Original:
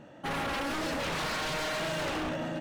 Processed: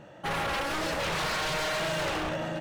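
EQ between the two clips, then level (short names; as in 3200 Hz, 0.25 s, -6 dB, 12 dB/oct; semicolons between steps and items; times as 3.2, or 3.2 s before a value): bell 260 Hz -13.5 dB 0.3 oct; +3.0 dB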